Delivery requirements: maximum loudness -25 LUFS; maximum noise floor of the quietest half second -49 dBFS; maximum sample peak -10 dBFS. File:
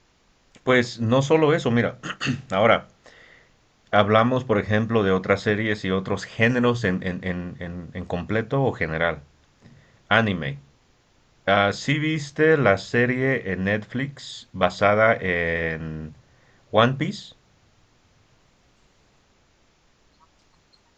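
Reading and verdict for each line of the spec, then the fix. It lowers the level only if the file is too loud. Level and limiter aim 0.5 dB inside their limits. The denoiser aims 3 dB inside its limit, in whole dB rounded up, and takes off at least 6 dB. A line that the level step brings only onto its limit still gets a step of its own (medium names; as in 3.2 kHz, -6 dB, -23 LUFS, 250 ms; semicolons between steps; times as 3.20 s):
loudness -22.0 LUFS: fail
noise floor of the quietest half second -61 dBFS: pass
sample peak -1.5 dBFS: fail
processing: trim -3.5 dB; peak limiter -10.5 dBFS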